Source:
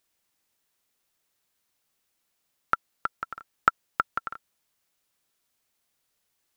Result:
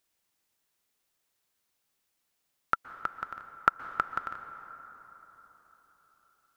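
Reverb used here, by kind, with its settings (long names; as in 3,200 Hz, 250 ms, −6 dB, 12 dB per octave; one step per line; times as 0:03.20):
dense smooth reverb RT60 4.5 s, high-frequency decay 0.45×, pre-delay 110 ms, DRR 11.5 dB
level −2.5 dB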